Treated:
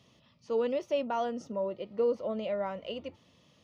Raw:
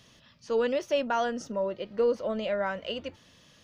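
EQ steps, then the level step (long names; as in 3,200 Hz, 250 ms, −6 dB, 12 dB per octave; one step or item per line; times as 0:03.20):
high-pass filter 75 Hz
parametric band 1,600 Hz −14.5 dB 0.27 octaves
high-shelf EQ 3,500 Hz −10 dB
−2.5 dB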